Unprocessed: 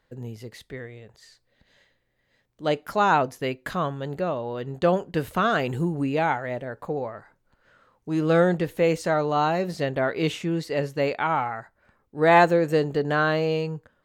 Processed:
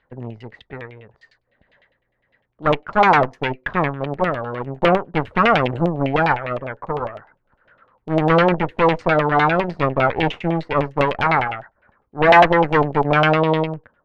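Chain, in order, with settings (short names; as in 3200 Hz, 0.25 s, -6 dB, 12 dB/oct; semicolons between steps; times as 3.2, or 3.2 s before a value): added harmonics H 8 -12 dB, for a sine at -7 dBFS; LFO low-pass saw down 9.9 Hz 620–3100 Hz; gain +1.5 dB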